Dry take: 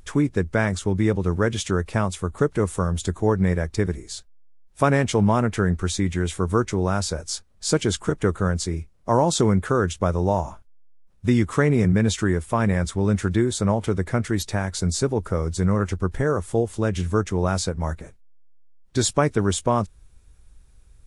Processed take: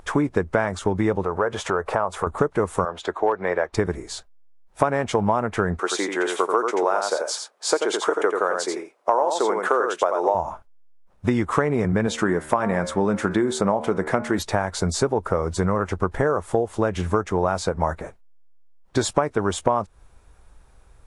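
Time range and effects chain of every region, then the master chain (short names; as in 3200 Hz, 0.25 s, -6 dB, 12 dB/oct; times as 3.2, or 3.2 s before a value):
1.23–2.27 band shelf 820 Hz +10 dB 2.3 oct + compressor 2.5:1, threshold -31 dBFS
2.85–3.73 three-band isolator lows -21 dB, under 340 Hz, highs -17 dB, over 4600 Hz + hard clip -15 dBFS
5.79–10.35 HPF 350 Hz 24 dB/oct + echo 86 ms -6 dB
12.07–14.39 resonant low shelf 130 Hz -7 dB, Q 1.5 + de-hum 76.48 Hz, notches 33 + mismatched tape noise reduction encoder only
whole clip: bell 840 Hz +15 dB 2.5 oct; compressor, threshold -16 dBFS; gain -1 dB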